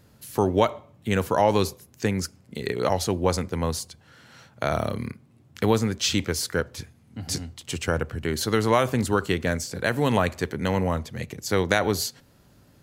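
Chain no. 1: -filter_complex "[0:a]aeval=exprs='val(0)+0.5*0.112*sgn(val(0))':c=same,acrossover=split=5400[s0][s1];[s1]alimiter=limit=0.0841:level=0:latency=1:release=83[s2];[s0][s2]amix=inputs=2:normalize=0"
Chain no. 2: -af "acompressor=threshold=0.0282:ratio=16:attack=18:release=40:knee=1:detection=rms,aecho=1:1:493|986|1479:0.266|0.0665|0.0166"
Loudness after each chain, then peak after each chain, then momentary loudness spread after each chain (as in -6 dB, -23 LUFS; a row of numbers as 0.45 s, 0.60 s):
-21.0 LUFS, -34.0 LUFS; -3.5 dBFS, -12.0 dBFS; 6 LU, 7 LU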